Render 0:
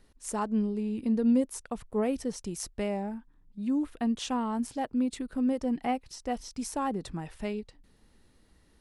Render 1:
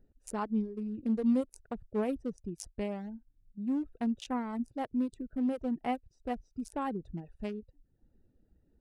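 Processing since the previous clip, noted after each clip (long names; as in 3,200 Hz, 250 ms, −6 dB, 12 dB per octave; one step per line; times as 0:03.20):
adaptive Wiener filter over 41 samples
reverb reduction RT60 0.67 s
level −2 dB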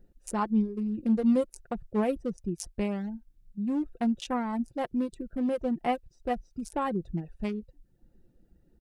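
comb filter 5.7 ms, depth 40%
level +5 dB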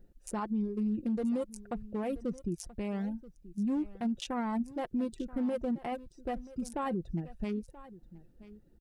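brickwall limiter −26 dBFS, peak gain reduction 11 dB
single-tap delay 980 ms −18 dB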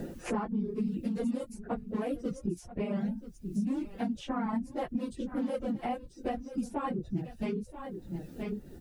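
random phases in long frames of 50 ms
multiband upward and downward compressor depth 100%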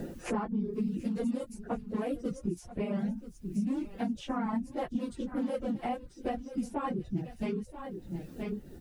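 delay with a high-pass on its return 736 ms, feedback 44%, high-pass 2,700 Hz, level −15.5 dB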